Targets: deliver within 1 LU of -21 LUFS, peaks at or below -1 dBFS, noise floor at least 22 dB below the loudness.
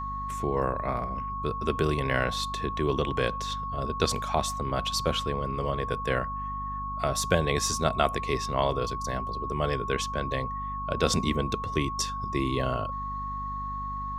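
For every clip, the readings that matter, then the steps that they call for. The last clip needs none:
hum 50 Hz; highest harmonic 250 Hz; hum level -36 dBFS; steady tone 1.1 kHz; tone level -32 dBFS; loudness -29.0 LUFS; peak level -8.0 dBFS; loudness target -21.0 LUFS
-> hum notches 50/100/150/200/250 Hz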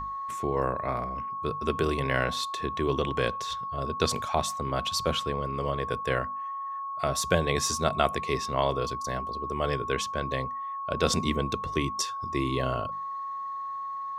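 hum not found; steady tone 1.1 kHz; tone level -32 dBFS
-> band-stop 1.1 kHz, Q 30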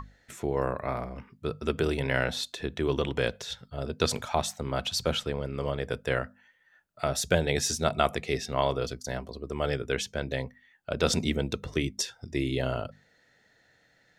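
steady tone not found; loudness -30.0 LUFS; peak level -8.5 dBFS; loudness target -21.0 LUFS
-> trim +9 dB; peak limiter -1 dBFS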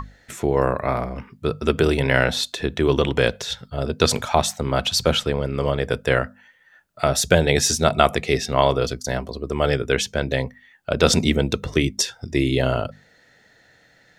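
loudness -21.5 LUFS; peak level -1.0 dBFS; noise floor -57 dBFS

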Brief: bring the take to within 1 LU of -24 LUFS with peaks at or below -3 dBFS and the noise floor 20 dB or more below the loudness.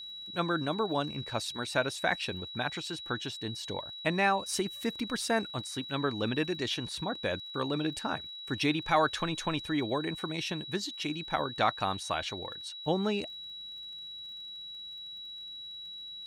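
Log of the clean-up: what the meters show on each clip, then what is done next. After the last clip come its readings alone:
tick rate 47 per s; steady tone 3.9 kHz; tone level -41 dBFS; loudness -33.0 LUFS; peak level -14.0 dBFS; loudness target -24.0 LUFS
-> de-click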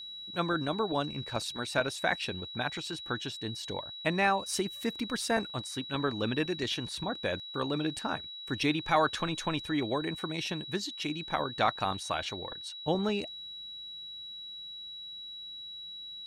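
tick rate 0.18 per s; steady tone 3.9 kHz; tone level -41 dBFS
-> band-stop 3.9 kHz, Q 30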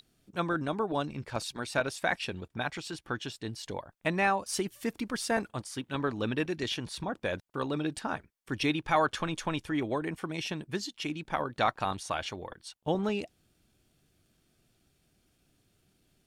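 steady tone not found; loudness -33.0 LUFS; peak level -14.0 dBFS; loudness target -24.0 LUFS
-> trim +9 dB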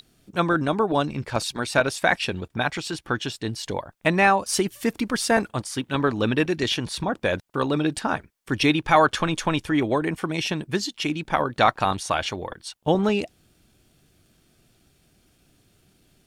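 loudness -24.0 LUFS; peak level -5.0 dBFS; noise floor -63 dBFS

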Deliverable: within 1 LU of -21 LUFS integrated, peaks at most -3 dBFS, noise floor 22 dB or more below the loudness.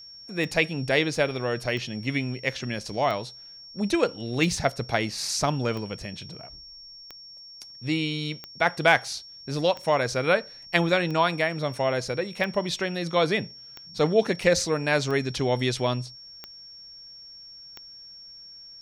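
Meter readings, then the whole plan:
clicks found 14; steady tone 5.5 kHz; tone level -43 dBFS; loudness -26.0 LUFS; peak level -5.5 dBFS; loudness target -21.0 LUFS
-> de-click; band-stop 5.5 kHz, Q 30; trim +5 dB; peak limiter -3 dBFS

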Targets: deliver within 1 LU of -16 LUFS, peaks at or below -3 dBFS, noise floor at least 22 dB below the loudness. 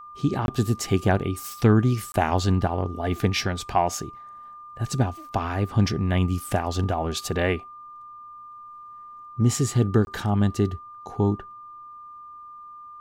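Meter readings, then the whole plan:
dropouts 3; longest dropout 21 ms; steady tone 1.2 kHz; tone level -40 dBFS; loudness -24.5 LUFS; peak level -6.5 dBFS; loudness target -16.0 LUFS
-> interpolate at 0.46/2.12/10.05 s, 21 ms; band-stop 1.2 kHz, Q 30; trim +8.5 dB; peak limiter -3 dBFS

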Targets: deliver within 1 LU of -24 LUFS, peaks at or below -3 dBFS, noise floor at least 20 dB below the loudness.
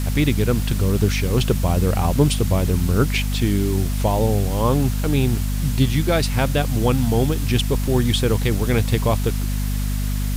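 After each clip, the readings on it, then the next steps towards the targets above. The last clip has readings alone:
hum 50 Hz; highest harmonic 250 Hz; hum level -20 dBFS; noise floor -22 dBFS; noise floor target -40 dBFS; loudness -20.0 LUFS; peak level -2.5 dBFS; loudness target -24.0 LUFS
-> hum notches 50/100/150/200/250 Hz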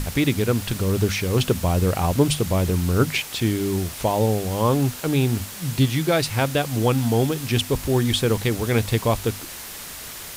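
hum not found; noise floor -36 dBFS; noise floor target -42 dBFS
-> noise print and reduce 6 dB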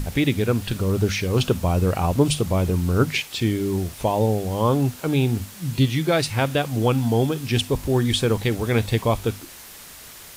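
noise floor -42 dBFS; loudness -22.0 LUFS; peak level -4.5 dBFS; loudness target -24.0 LUFS
-> trim -2 dB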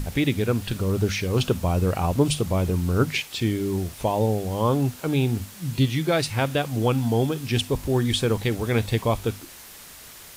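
loudness -24.0 LUFS; peak level -6.5 dBFS; noise floor -44 dBFS

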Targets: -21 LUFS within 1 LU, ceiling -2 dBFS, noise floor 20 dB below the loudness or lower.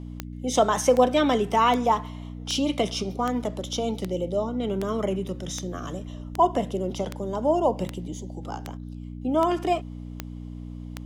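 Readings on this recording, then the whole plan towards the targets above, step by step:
clicks found 15; hum 60 Hz; highest harmonic 300 Hz; hum level -35 dBFS; loudness -25.5 LUFS; peak level -7.0 dBFS; loudness target -21.0 LUFS
-> de-click; de-hum 60 Hz, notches 5; trim +4.5 dB

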